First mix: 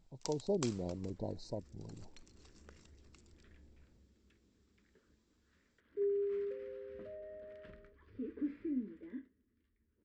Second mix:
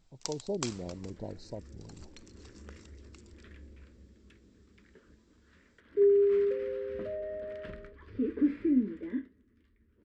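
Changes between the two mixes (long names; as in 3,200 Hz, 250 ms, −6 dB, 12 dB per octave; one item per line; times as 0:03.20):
first sound +6.5 dB
second sound +11.5 dB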